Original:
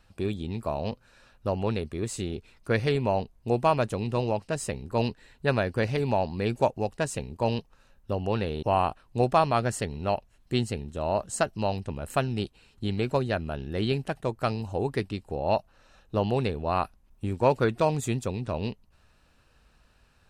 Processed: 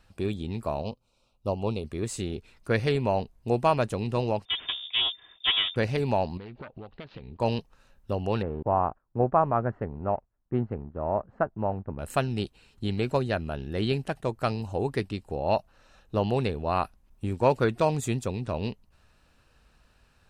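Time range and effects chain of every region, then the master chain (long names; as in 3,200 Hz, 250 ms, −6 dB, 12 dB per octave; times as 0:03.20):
0:00.82–0:01.84: Butterworth band-reject 1,700 Hz, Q 1.3 + expander for the loud parts, over −44 dBFS
0:04.45–0:05.76: lower of the sound and its delayed copy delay 3.1 ms + voice inversion scrambler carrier 3,600 Hz
0:06.37–0:07.40: phase distortion by the signal itself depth 0.46 ms + Butterworth low-pass 4,200 Hz 48 dB per octave + downward compressor 12 to 1, threshold −37 dBFS
0:08.42–0:11.99: mu-law and A-law mismatch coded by A + noise gate −55 dBFS, range −8 dB + low-pass filter 1,500 Hz 24 dB per octave
whole clip: no processing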